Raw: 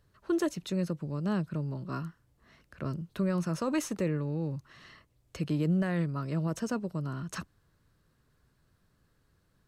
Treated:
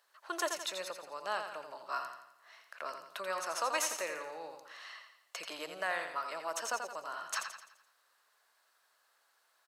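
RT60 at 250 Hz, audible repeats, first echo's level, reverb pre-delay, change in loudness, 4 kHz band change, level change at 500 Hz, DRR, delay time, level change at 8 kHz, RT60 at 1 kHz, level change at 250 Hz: no reverb, 5, -7.0 dB, no reverb, -5.5 dB, +5.5 dB, -4.5 dB, no reverb, 85 ms, +6.0 dB, no reverb, -23.5 dB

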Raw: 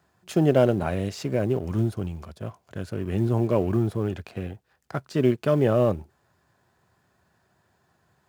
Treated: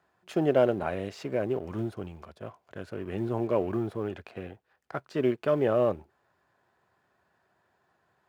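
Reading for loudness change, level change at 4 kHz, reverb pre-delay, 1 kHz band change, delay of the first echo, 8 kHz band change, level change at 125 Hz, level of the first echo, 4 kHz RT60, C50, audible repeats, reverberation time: -4.0 dB, -5.5 dB, no reverb, -2.0 dB, no echo, no reading, -11.0 dB, no echo, no reverb, no reverb, no echo, no reverb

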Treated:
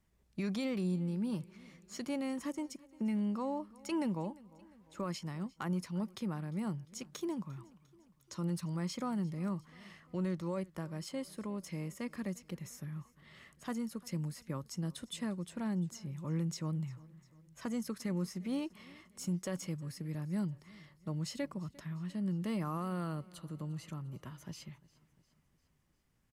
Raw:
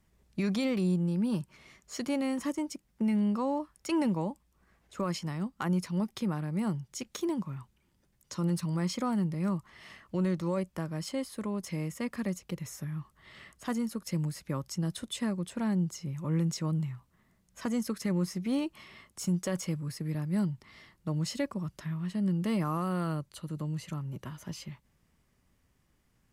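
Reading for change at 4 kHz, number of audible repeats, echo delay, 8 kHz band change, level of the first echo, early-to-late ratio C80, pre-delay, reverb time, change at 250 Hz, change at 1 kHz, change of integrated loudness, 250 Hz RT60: -6.0 dB, 3, 350 ms, -6.0 dB, -22.5 dB, no reverb, no reverb, no reverb, -6.0 dB, -6.0 dB, -6.0 dB, no reverb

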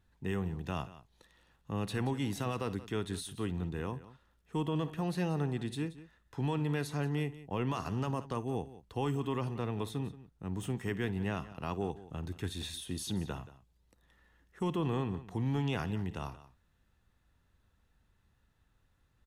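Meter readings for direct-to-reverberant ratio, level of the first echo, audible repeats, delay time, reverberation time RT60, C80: no reverb, -18.0 dB, 2, 55 ms, no reverb, no reverb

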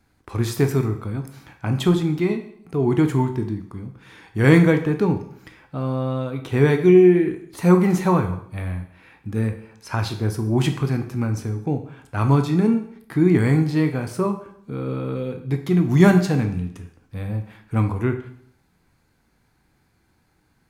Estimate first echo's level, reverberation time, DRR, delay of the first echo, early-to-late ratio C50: no echo, 0.65 s, 6.0 dB, no echo, 10.5 dB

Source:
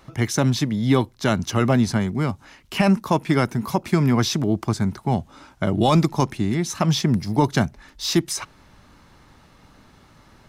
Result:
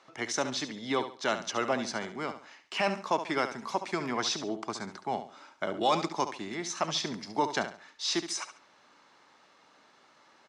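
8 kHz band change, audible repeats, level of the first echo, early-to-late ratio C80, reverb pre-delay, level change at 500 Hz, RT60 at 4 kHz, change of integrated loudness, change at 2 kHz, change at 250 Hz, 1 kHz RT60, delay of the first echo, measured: -6.5 dB, 3, -10.5 dB, no reverb, no reverb, -8.0 dB, no reverb, -10.5 dB, -5.0 dB, -16.0 dB, no reverb, 70 ms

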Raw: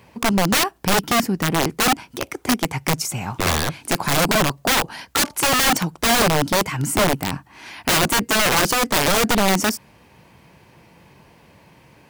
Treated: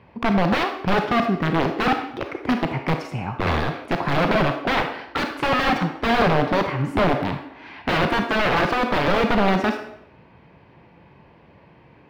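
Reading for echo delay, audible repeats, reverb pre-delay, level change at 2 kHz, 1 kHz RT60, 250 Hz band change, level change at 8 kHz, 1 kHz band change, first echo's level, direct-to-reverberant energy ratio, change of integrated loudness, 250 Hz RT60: no echo, no echo, 30 ms, -2.5 dB, 0.70 s, 0.0 dB, -24.5 dB, -0.5 dB, no echo, 5.0 dB, -2.5 dB, 1.1 s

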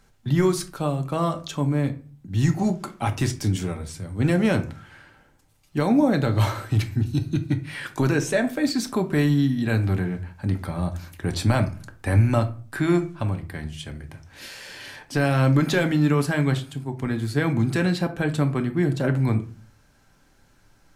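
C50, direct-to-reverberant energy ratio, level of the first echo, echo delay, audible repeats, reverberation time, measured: 14.5 dB, 6.0 dB, no echo, no echo, no echo, 0.40 s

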